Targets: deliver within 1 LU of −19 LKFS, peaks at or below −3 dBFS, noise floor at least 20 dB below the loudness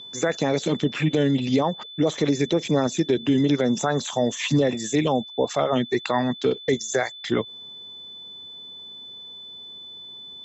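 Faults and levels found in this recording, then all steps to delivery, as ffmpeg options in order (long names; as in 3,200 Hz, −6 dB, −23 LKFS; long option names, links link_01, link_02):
interfering tone 3,500 Hz; level of the tone −38 dBFS; integrated loudness −23.5 LKFS; sample peak −11.0 dBFS; target loudness −19.0 LKFS
→ -af "bandreject=frequency=3500:width=30"
-af "volume=4.5dB"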